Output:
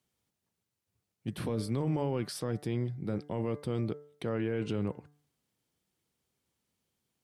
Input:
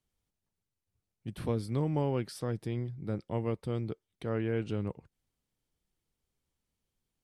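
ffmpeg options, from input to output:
-af "highpass=110,bandreject=f=146.9:t=h:w=4,bandreject=f=293.8:t=h:w=4,bandreject=f=440.7:t=h:w=4,bandreject=f=587.6:t=h:w=4,bandreject=f=734.5:t=h:w=4,bandreject=f=881.4:t=h:w=4,bandreject=f=1028.3:t=h:w=4,bandreject=f=1175.2:t=h:w=4,bandreject=f=1322.1:t=h:w=4,bandreject=f=1469:t=h:w=4,bandreject=f=1615.9:t=h:w=4,bandreject=f=1762.8:t=h:w=4,bandreject=f=1909.7:t=h:w=4,bandreject=f=2056.6:t=h:w=4,alimiter=level_in=1.58:limit=0.0631:level=0:latency=1:release=13,volume=0.631,volume=1.78"

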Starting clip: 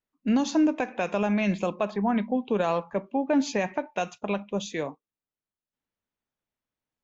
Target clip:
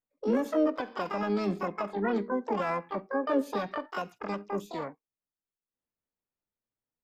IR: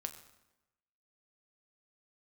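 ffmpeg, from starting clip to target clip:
-filter_complex "[0:a]equalizer=f=5300:w=0.36:g=-13.5,asplit=3[s0][s1][s2];[s1]asetrate=66075,aresample=44100,atempo=0.66742,volume=0.282[s3];[s2]asetrate=88200,aresample=44100,atempo=0.5,volume=0.891[s4];[s0][s3][s4]amix=inputs=3:normalize=0,volume=0.501"

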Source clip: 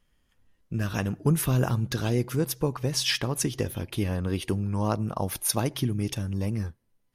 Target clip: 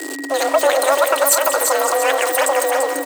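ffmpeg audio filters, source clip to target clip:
-filter_complex "[0:a]aeval=exprs='val(0)+0.5*0.0316*sgn(val(0))':c=same,asetrate=103194,aresample=44100,equalizer=f=8100:w=2.9:g=8.5,asplit=2[s0][s1];[s1]aecho=0:1:340|680|1020|1360:0.531|0.196|0.0727|0.0269[s2];[s0][s2]amix=inputs=2:normalize=0,afreqshift=270,aeval=exprs='val(0)+0.0126*sin(2*PI*1900*n/s)':c=same,asplit=2[s3][s4];[s4]adelay=204.1,volume=0.282,highshelf=f=4000:g=-4.59[s5];[s3][s5]amix=inputs=2:normalize=0,volume=2.24"

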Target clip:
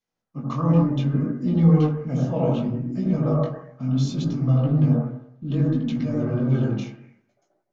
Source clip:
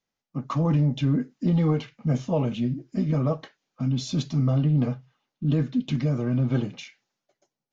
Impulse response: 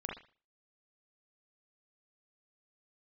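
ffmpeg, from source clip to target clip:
-filter_complex "[1:a]atrim=start_sample=2205,asetrate=22050,aresample=44100[s0];[0:a][s0]afir=irnorm=-1:irlink=0,flanger=delay=16.5:depth=7.3:speed=0.66"

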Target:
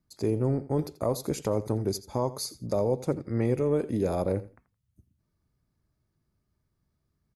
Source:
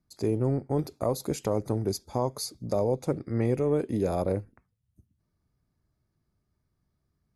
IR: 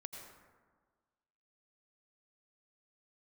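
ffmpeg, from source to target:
-filter_complex "[0:a]bandreject=f=730:w=20,asplit=2[s0][s1];[s1]aecho=0:1:84|168:0.141|0.0254[s2];[s0][s2]amix=inputs=2:normalize=0"

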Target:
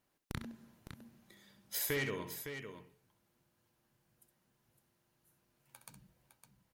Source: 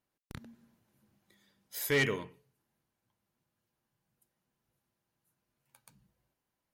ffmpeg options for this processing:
-filter_complex "[0:a]acompressor=threshold=0.01:ratio=6,asplit=2[s0][s1];[s1]aecho=0:1:63|66|559:0.106|0.316|0.355[s2];[s0][s2]amix=inputs=2:normalize=0,volume=1.88"

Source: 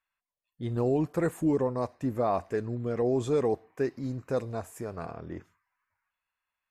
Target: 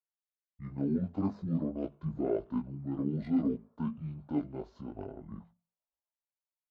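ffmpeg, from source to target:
-filter_complex "[0:a]acrossover=split=210[s0][s1];[s0]acompressor=threshold=0.00398:ratio=8[s2];[s2][s1]amix=inputs=2:normalize=0,agate=range=0.126:threshold=0.00224:ratio=16:detection=peak,bandreject=f=50:t=h:w=6,bandreject=f=100:t=h:w=6,bandreject=f=150:t=h:w=6,bandreject=f=200:t=h:w=6,bandreject=f=250:t=h:w=6,bandreject=f=300:t=h:w=6,bandreject=f=350:t=h:w=6,bandreject=f=400:t=h:w=6,adynamicsmooth=sensitivity=4:basefreq=3700,asetrate=25476,aresample=44100,atempo=1.73107,flanger=delay=18:depth=3.2:speed=0.54"

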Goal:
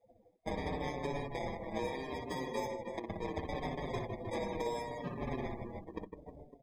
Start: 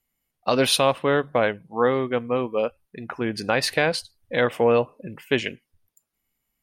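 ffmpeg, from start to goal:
-filter_complex "[0:a]crystalizer=i=8:c=0,acrusher=bits=3:mode=log:mix=0:aa=0.000001,asettb=1/sr,asplit=3[s0][s1][s2];[s0]atrim=end=2.264[s3];[s1]atrim=start=2.26:end=4.6,asetpts=PTS-STARTPTS,afade=t=in:d=0.004:c=qsin,afade=t=out:st=2.336:d=0.004:c=qsin,highpass=430[s4];[s2]atrim=start=4.596[s5];[s3][s4]acrossfade=d=0.004:c1=hsin:c2=qsin[s6];[s6][s5]acrossfade=d=0.004:c1=qsin:c2=hsin,acrusher=samples=31:mix=1:aa=0.000001,alimiter=limit=0.112:level=0:latency=1:release=283,aecho=1:1:60|156|309.6|555.4|948.6:0.631|0.398|0.251|0.158|0.1,acompressor=threshold=0.0141:ratio=3,afftdn=nr=29:nf=-46,asplit=2[s7][s8];[s8]adelay=5.4,afreqshift=-0.73[s9];[s7][s9]amix=inputs=2:normalize=1,volume=1.33"

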